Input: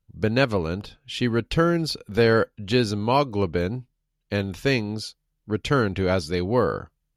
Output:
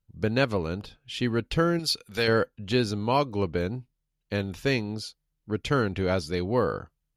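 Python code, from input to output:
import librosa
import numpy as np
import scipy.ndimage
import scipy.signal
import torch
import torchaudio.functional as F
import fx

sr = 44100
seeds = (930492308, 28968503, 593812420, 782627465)

y = fx.tilt_shelf(x, sr, db=-7.5, hz=1300.0, at=(1.79, 2.28))
y = y * librosa.db_to_amplitude(-3.5)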